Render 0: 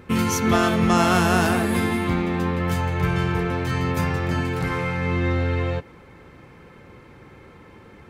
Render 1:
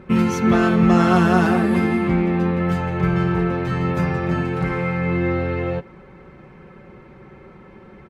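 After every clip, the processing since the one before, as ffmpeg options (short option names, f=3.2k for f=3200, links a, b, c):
-af "lowpass=f=1.5k:p=1,aecho=1:1:5.3:0.58,volume=2.5dB"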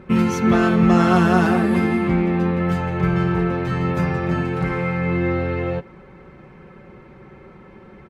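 -af anull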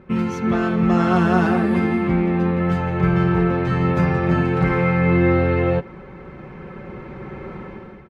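-af "lowpass=f=3.8k:p=1,dynaudnorm=f=690:g=3:m=16dB,volume=-4dB"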